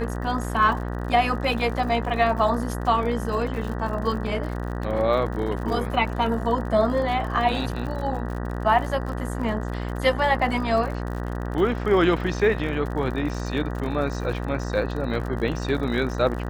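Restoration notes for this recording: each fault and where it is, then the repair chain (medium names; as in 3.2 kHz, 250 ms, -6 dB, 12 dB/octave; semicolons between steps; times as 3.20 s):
buzz 60 Hz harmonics 32 -29 dBFS
crackle 59 per s -32 dBFS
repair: de-click; de-hum 60 Hz, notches 32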